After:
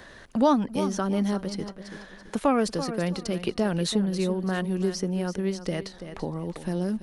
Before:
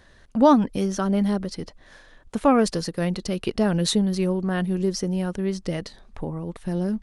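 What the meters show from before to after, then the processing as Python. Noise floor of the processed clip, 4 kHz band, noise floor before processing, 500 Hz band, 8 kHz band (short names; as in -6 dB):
-48 dBFS, -3.0 dB, -53 dBFS, -3.0 dB, -3.5 dB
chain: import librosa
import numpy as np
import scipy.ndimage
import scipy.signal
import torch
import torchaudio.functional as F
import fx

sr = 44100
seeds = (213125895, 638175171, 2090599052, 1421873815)

y = fx.low_shelf(x, sr, hz=140.0, db=-5.5)
y = fx.echo_feedback(y, sr, ms=334, feedback_pct=24, wet_db=-13.5)
y = fx.band_squash(y, sr, depth_pct=40)
y = y * 10.0 ** (-2.0 / 20.0)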